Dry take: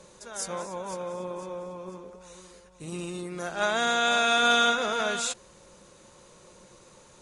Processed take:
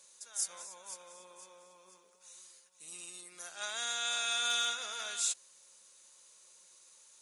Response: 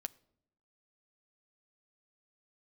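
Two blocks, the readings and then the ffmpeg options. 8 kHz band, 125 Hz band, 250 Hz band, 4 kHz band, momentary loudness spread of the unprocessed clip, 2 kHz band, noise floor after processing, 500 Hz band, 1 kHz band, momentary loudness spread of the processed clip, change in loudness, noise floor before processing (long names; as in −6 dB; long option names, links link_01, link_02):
−0.5 dB, below −30 dB, −29.0 dB, −6.0 dB, 19 LU, −12.5 dB, −64 dBFS, −21.5 dB, −15.5 dB, 22 LU, −8.0 dB, −55 dBFS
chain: -af "aderivative"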